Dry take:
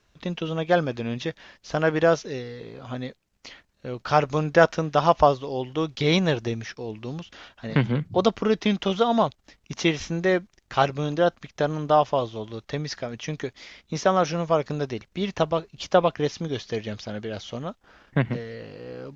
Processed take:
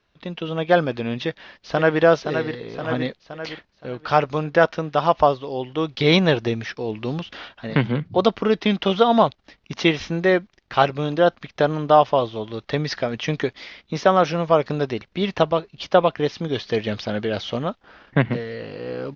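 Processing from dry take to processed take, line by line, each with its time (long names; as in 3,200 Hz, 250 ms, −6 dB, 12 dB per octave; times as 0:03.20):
0:01.23–0:02.02: delay throw 520 ms, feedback 50%, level −7 dB
whole clip: low-pass filter 4,800 Hz 24 dB per octave; low-shelf EQ 110 Hz −7 dB; automatic gain control gain up to 10 dB; level −1 dB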